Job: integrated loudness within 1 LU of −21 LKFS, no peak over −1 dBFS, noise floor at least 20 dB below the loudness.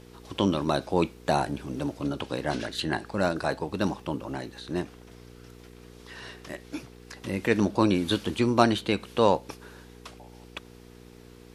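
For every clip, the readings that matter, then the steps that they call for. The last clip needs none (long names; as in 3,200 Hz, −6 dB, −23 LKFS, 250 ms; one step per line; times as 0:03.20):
mains hum 60 Hz; hum harmonics up to 480 Hz; level of the hum −47 dBFS; integrated loudness −27.5 LKFS; sample peak −3.5 dBFS; target loudness −21.0 LKFS
→ hum removal 60 Hz, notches 8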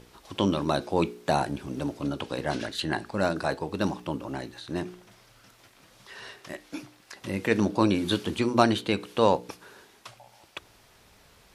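mains hum none found; integrated loudness −27.5 LKFS; sample peak −4.0 dBFS; target loudness −21.0 LKFS
→ level +6.5 dB
brickwall limiter −1 dBFS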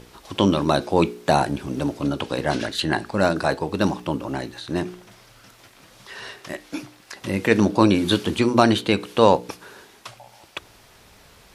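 integrated loudness −21.5 LKFS; sample peak −1.0 dBFS; background noise floor −52 dBFS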